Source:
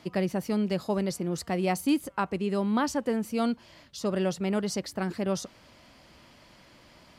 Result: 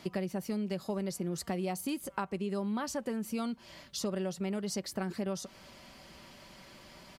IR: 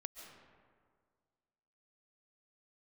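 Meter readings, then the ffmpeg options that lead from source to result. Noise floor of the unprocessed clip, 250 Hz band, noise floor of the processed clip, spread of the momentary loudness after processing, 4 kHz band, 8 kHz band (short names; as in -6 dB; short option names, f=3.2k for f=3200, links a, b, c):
-56 dBFS, -6.5 dB, -56 dBFS, 18 LU, -4.0 dB, -2.5 dB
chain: -af "highshelf=f=6.8k:g=5,aecho=1:1:5.2:0.35,acompressor=threshold=-33dB:ratio=6,volume=1dB"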